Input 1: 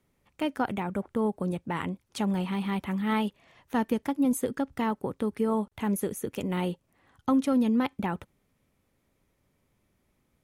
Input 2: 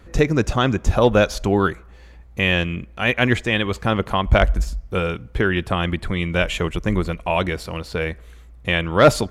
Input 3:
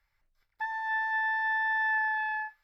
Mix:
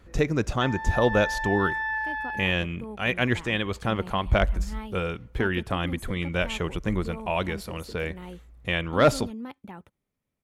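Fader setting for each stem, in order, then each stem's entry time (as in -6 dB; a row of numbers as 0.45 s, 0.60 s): -12.0 dB, -6.5 dB, -1.0 dB; 1.65 s, 0.00 s, 0.00 s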